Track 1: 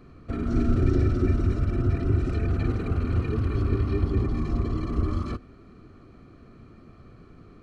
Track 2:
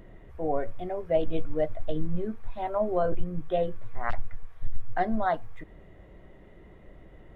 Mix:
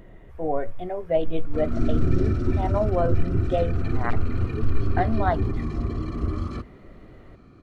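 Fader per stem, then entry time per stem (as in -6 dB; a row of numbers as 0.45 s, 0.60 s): -1.0 dB, +2.5 dB; 1.25 s, 0.00 s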